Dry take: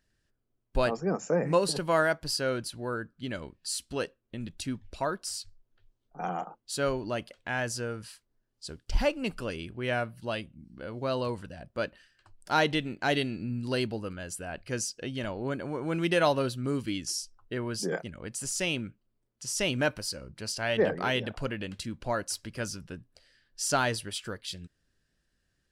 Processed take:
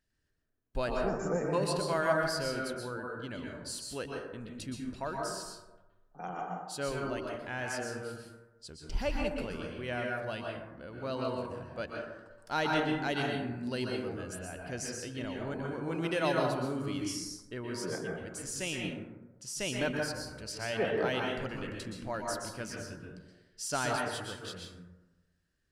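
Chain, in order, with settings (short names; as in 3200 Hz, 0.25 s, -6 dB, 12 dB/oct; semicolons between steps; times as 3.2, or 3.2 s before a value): plate-style reverb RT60 1.1 s, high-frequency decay 0.35×, pre-delay 0.11 s, DRR -1 dB; gain -7 dB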